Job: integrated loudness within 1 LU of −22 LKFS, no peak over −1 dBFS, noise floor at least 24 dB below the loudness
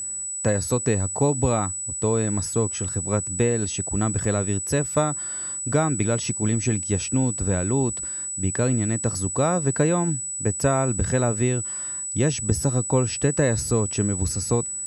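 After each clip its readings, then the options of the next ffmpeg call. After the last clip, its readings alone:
interfering tone 7,900 Hz; level of the tone −28 dBFS; integrated loudness −23.0 LKFS; sample peak −6.5 dBFS; target loudness −22.0 LKFS
→ -af "bandreject=frequency=7900:width=30"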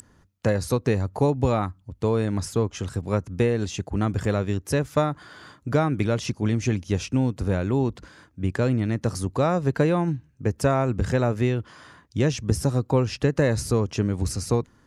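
interfering tone none found; integrated loudness −25.0 LKFS; sample peak −7.0 dBFS; target loudness −22.0 LKFS
→ -af "volume=3dB"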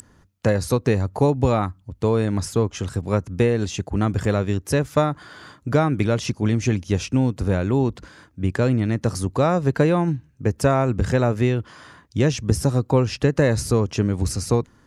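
integrated loudness −22.0 LKFS; sample peak −4.0 dBFS; background noise floor −56 dBFS

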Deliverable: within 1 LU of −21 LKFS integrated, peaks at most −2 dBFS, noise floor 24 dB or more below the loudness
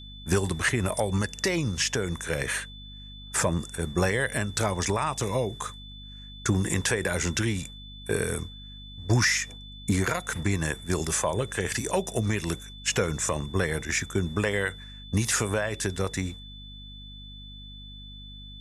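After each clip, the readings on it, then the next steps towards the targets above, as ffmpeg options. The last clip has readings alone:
mains hum 50 Hz; hum harmonics up to 250 Hz; level of the hum −44 dBFS; interfering tone 3,500 Hz; level of the tone −45 dBFS; integrated loudness −27.5 LKFS; sample peak −13.0 dBFS; target loudness −21.0 LKFS
→ -af "bandreject=frequency=50:width_type=h:width=4,bandreject=frequency=100:width_type=h:width=4,bandreject=frequency=150:width_type=h:width=4,bandreject=frequency=200:width_type=h:width=4,bandreject=frequency=250:width_type=h:width=4"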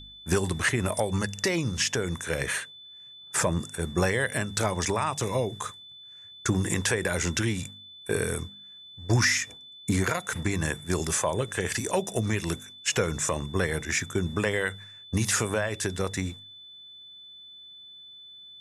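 mains hum none found; interfering tone 3,500 Hz; level of the tone −45 dBFS
→ -af "bandreject=frequency=3500:width=30"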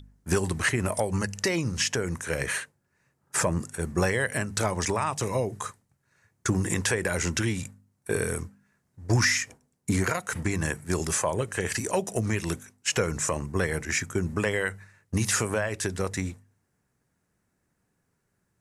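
interfering tone none found; integrated loudness −28.0 LKFS; sample peak −12.5 dBFS; target loudness −21.0 LKFS
→ -af "volume=7dB"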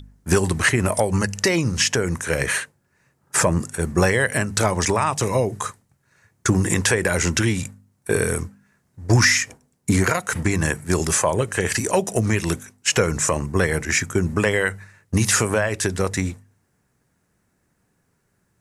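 integrated loudness −21.0 LKFS; sample peak −5.5 dBFS; background noise floor −68 dBFS

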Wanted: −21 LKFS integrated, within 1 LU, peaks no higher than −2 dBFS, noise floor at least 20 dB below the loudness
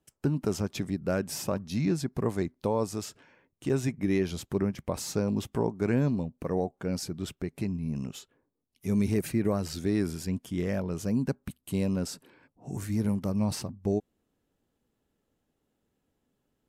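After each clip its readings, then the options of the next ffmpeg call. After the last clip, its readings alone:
integrated loudness −31.0 LKFS; sample peak −16.5 dBFS; target loudness −21.0 LKFS
→ -af "volume=10dB"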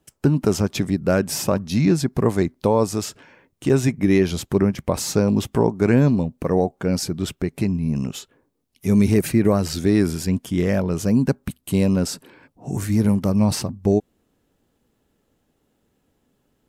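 integrated loudness −21.0 LKFS; sample peak −6.5 dBFS; background noise floor −69 dBFS

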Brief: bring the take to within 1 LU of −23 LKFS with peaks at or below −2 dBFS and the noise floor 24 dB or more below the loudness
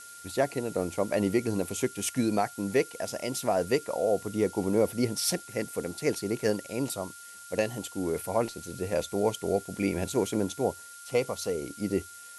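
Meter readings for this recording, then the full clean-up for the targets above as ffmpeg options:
interfering tone 1,400 Hz; level of the tone −48 dBFS; background noise floor −47 dBFS; target noise floor −54 dBFS; integrated loudness −30.0 LKFS; sample peak −12.5 dBFS; target loudness −23.0 LKFS
→ -af "bandreject=frequency=1400:width=30"
-af "afftdn=noise_reduction=7:noise_floor=-47"
-af "volume=7dB"

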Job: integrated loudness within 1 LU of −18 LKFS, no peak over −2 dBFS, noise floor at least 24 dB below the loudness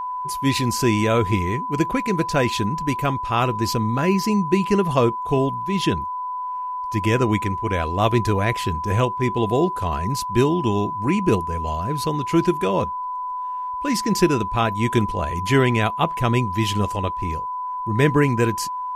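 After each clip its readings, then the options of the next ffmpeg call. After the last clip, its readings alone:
interfering tone 1,000 Hz; level of the tone −25 dBFS; integrated loudness −21.5 LKFS; sample peak −4.0 dBFS; target loudness −18.0 LKFS
→ -af "bandreject=frequency=1000:width=30"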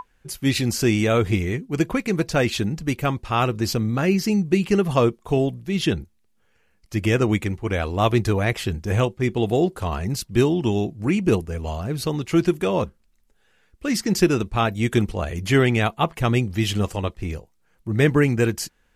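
interfering tone none found; integrated loudness −22.5 LKFS; sample peak −4.5 dBFS; target loudness −18.0 LKFS
→ -af "volume=4.5dB,alimiter=limit=-2dB:level=0:latency=1"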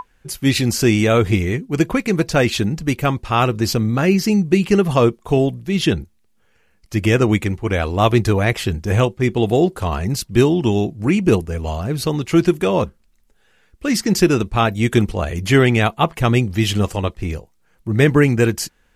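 integrated loudness −18.0 LKFS; sample peak −2.0 dBFS; background noise floor −59 dBFS

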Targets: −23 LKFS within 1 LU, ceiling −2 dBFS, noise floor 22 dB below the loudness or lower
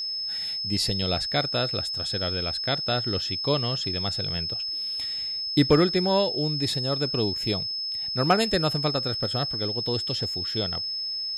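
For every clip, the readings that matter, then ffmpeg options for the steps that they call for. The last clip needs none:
interfering tone 5,200 Hz; level of the tone −28 dBFS; integrated loudness −25.0 LKFS; sample peak −9.5 dBFS; target loudness −23.0 LKFS
→ -af "bandreject=frequency=5200:width=30"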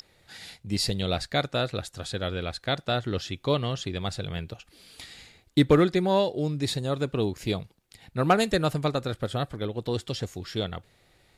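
interfering tone none found; integrated loudness −27.5 LKFS; sample peak −10.5 dBFS; target loudness −23.0 LKFS
→ -af "volume=4.5dB"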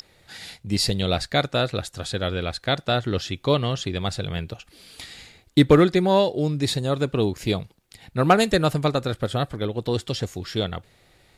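integrated loudness −23.0 LKFS; sample peak −6.0 dBFS; background noise floor −59 dBFS

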